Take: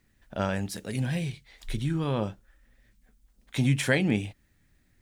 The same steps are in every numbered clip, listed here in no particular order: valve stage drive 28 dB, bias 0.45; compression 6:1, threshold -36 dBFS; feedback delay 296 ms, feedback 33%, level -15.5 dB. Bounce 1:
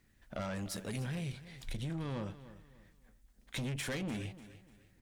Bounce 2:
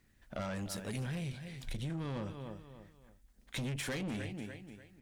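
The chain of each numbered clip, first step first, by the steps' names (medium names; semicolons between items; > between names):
valve stage > compression > feedback delay; feedback delay > valve stage > compression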